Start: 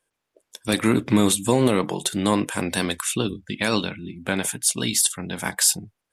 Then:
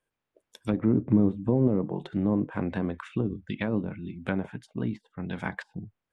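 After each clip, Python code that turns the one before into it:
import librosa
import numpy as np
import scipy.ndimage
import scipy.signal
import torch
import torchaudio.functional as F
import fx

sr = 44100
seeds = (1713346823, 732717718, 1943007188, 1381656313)

y = fx.env_lowpass_down(x, sr, base_hz=540.0, full_db=-18.5)
y = fx.bass_treble(y, sr, bass_db=5, treble_db=-9)
y = F.gain(torch.from_numpy(y), -5.5).numpy()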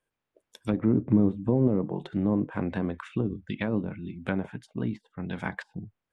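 y = x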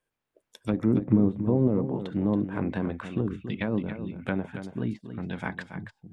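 y = x + 10.0 ** (-10.0 / 20.0) * np.pad(x, (int(279 * sr / 1000.0), 0))[:len(x)]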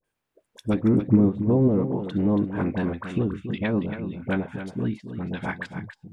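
y = fx.dispersion(x, sr, late='highs', ms=43.0, hz=1000.0)
y = F.gain(torch.from_numpy(y), 3.5).numpy()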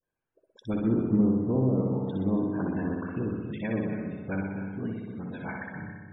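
y = fx.room_flutter(x, sr, wall_m=10.6, rt60_s=1.3)
y = fx.spec_topn(y, sr, count=64)
y = F.gain(torch.from_numpy(y), -7.5).numpy()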